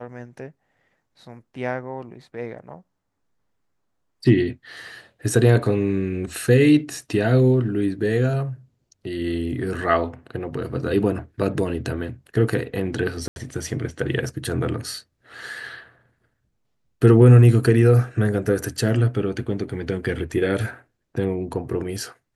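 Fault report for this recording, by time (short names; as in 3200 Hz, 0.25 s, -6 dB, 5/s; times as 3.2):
13.28–13.36 gap 81 ms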